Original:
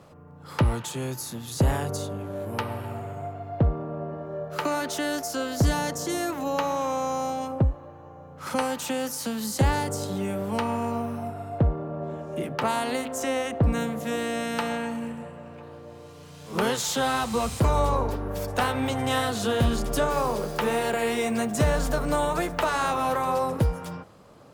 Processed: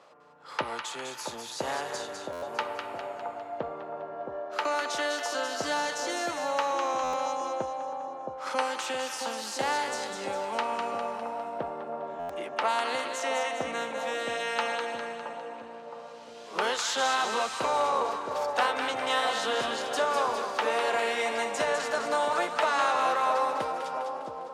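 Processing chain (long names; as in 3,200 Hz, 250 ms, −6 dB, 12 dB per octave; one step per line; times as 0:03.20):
band-pass filter 580–6,200 Hz
on a send: echo with a time of its own for lows and highs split 980 Hz, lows 668 ms, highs 202 ms, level −5.5 dB
on the sum: buffer that repeats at 0:02.32/0:07.03/0:12.19, samples 512, times 8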